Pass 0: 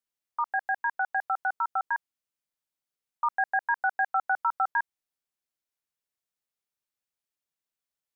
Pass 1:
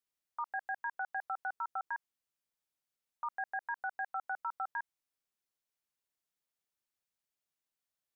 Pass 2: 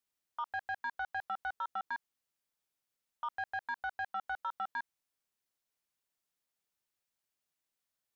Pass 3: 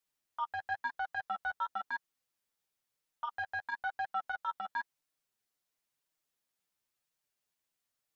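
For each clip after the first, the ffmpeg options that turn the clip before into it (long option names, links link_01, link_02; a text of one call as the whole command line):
ffmpeg -i in.wav -af "alimiter=level_in=4dB:limit=-24dB:level=0:latency=1:release=38,volume=-4dB,volume=-1.5dB" out.wav
ffmpeg -i in.wav -af "asoftclip=type=tanh:threshold=-31dB,volume=2dB" out.wav
ffmpeg -i in.wav -af "flanger=delay=6.3:depth=4.6:regen=5:speed=0.98:shape=sinusoidal,volume=4.5dB" out.wav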